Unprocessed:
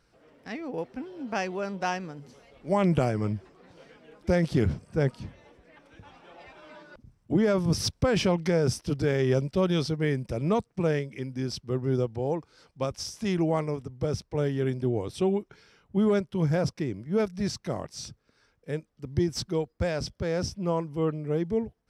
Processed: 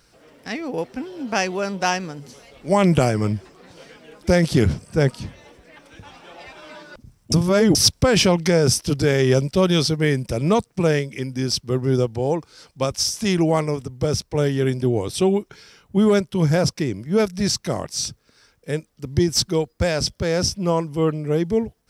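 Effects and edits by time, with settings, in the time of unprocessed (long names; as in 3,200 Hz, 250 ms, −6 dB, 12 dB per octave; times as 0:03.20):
0:07.32–0:07.75: reverse
whole clip: high-shelf EQ 3,800 Hz +11 dB; level +7 dB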